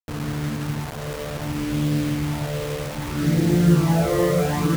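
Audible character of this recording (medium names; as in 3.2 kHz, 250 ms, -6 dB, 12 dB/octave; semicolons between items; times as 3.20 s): phasing stages 12, 0.65 Hz, lowest notch 250–1100 Hz; a quantiser's noise floor 6-bit, dither none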